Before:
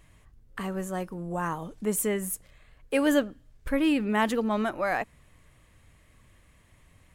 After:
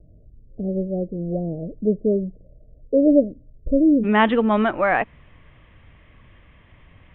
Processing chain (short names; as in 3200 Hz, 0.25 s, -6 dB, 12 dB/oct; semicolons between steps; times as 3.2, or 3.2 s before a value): steep low-pass 660 Hz 96 dB/oct, from 4.03 s 3500 Hz; gain +8.5 dB